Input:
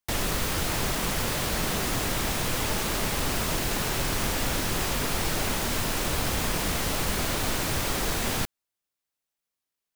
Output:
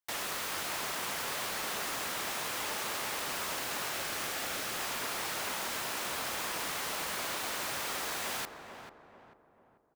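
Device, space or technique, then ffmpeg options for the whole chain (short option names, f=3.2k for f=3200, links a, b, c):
filter by subtraction: -filter_complex "[0:a]asettb=1/sr,asplit=3[a][b][c];[a]atrim=end=3.914[d];[b]atrim=start=3.91:end=4.79,asetpts=PTS-STARTPTS,afade=t=in:d=0.004:c=qsin,afade=t=out:st=0.876:d=0.004:c=qsin,bandreject=f=980:w=6.9[e];[c]atrim=start=4.786[f];[d][e]acrossfade=d=0.004:c1=hsin:c2=qsin[g];[g][f]acrossfade=d=0.004:c1=qsin:c2=hsin,asplit=2[h][i];[i]lowpass=1.1k,volume=-1[j];[h][j]amix=inputs=2:normalize=0,asplit=2[k][l];[l]adelay=441,lowpass=f=1.2k:p=1,volume=-6.5dB,asplit=2[m][n];[n]adelay=441,lowpass=f=1.2k:p=1,volume=0.48,asplit=2[o][p];[p]adelay=441,lowpass=f=1.2k:p=1,volume=0.48,asplit=2[q][r];[r]adelay=441,lowpass=f=1.2k:p=1,volume=0.48,asplit=2[s][t];[t]adelay=441,lowpass=f=1.2k:p=1,volume=0.48,asplit=2[u][v];[v]adelay=441,lowpass=f=1.2k:p=1,volume=0.48[w];[k][m][o][q][s][u][w]amix=inputs=7:normalize=0,volume=-7dB"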